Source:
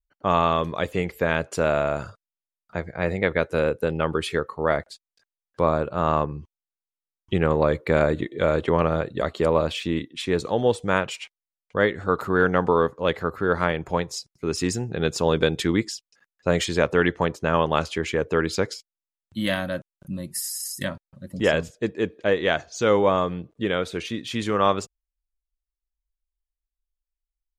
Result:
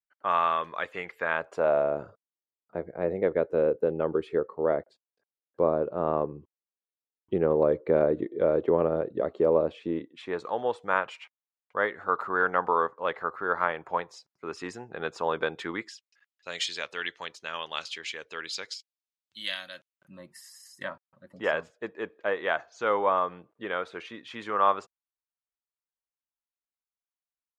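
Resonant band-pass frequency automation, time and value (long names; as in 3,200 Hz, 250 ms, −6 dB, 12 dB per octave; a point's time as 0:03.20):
resonant band-pass, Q 1.3
0:01.18 1,500 Hz
0:01.96 430 Hz
0:09.84 430 Hz
0:10.42 1,100 Hz
0:15.68 1,100 Hz
0:16.49 3,900 Hz
0:19.75 3,900 Hz
0:20.22 1,100 Hz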